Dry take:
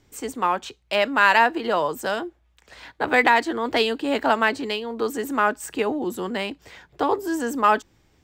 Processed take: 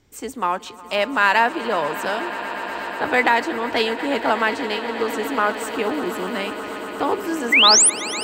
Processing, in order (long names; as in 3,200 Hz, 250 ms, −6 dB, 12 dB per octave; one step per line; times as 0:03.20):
0:05.49–0:06.34: surface crackle 110 per second −33 dBFS
0:07.52–0:07.90: sound drawn into the spectrogram rise 1,900–11,000 Hz −13 dBFS
echo that builds up and dies away 121 ms, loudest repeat 8, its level −17.5 dB